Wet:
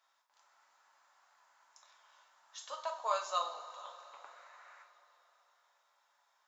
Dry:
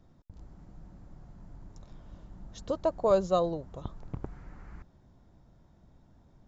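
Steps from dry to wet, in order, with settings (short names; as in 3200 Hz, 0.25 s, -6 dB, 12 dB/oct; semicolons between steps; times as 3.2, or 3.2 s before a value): HPF 1000 Hz 24 dB/oct; two-slope reverb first 0.37 s, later 4 s, from -18 dB, DRR 0 dB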